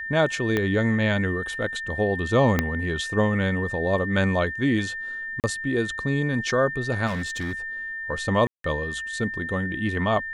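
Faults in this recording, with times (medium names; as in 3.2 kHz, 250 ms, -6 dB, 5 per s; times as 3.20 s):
whine 1.8 kHz -30 dBFS
0.57 s: pop -11 dBFS
2.59 s: pop -7 dBFS
5.40–5.44 s: dropout 38 ms
7.06–7.53 s: clipped -25 dBFS
8.47–8.64 s: dropout 173 ms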